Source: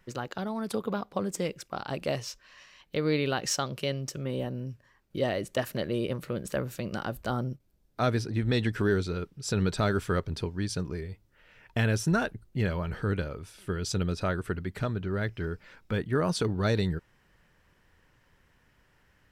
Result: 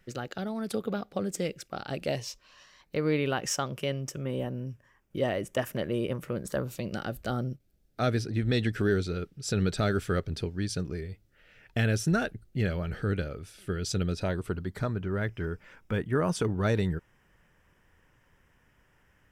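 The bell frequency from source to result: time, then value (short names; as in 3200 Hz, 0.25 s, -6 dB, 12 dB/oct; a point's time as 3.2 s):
bell -13 dB 0.3 oct
2.01 s 1000 Hz
3.12 s 4200 Hz
6.27 s 4200 Hz
6.99 s 990 Hz
14.14 s 990 Hz
15.06 s 4200 Hz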